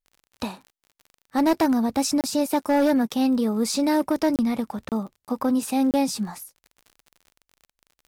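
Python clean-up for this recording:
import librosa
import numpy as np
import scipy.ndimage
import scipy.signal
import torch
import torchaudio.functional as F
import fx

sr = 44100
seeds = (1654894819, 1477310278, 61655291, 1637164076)

y = fx.fix_declip(x, sr, threshold_db=-15.0)
y = fx.fix_declick_ar(y, sr, threshold=6.5)
y = fx.fix_interpolate(y, sr, at_s=(0.92, 2.21, 4.36, 4.89, 5.25, 5.91), length_ms=28.0)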